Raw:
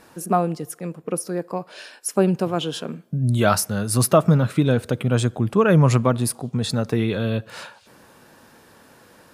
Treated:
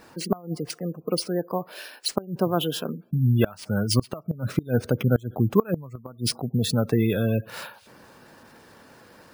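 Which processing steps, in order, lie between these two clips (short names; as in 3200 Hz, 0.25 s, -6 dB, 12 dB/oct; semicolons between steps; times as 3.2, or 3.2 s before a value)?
spectral gate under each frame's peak -25 dB strong; careless resampling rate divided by 3×, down none, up hold; flipped gate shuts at -8 dBFS, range -25 dB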